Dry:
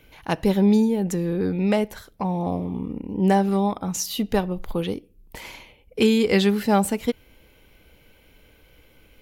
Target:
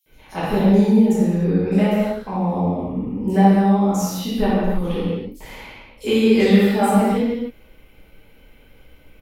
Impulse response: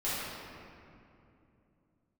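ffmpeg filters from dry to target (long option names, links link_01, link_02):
-filter_complex "[0:a]acrossover=split=4800[link_01][link_02];[link_01]adelay=60[link_03];[link_03][link_02]amix=inputs=2:normalize=0[link_04];[1:a]atrim=start_sample=2205,afade=type=out:start_time=0.38:duration=0.01,atrim=end_sample=17199[link_05];[link_04][link_05]afir=irnorm=-1:irlink=0,volume=-4dB"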